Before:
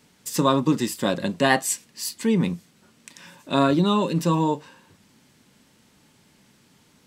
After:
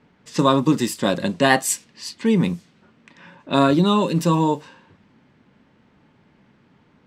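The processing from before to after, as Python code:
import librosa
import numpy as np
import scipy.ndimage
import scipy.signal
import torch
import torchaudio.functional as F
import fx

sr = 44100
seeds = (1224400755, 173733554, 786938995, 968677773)

y = fx.env_lowpass(x, sr, base_hz=1900.0, full_db=-20.0)
y = F.gain(torch.from_numpy(y), 3.0).numpy()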